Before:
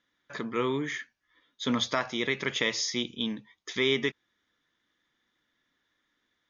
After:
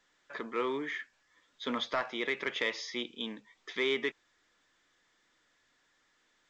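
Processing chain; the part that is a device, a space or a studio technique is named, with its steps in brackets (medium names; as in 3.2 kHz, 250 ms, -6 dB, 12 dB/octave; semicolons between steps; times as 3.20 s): telephone (band-pass 340–3100 Hz; saturation -17.5 dBFS, distortion -21 dB; trim -1.5 dB; A-law 128 kbps 16 kHz)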